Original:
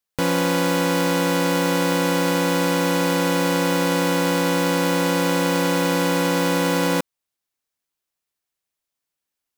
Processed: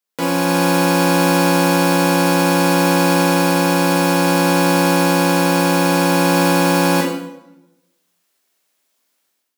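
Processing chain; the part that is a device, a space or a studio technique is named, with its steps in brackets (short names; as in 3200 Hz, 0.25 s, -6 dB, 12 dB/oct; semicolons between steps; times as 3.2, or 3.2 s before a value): far laptop microphone (reverb RT60 0.80 s, pre-delay 12 ms, DRR -1.5 dB; HPF 180 Hz 24 dB/oct; AGC gain up to 13.5 dB); gain -1 dB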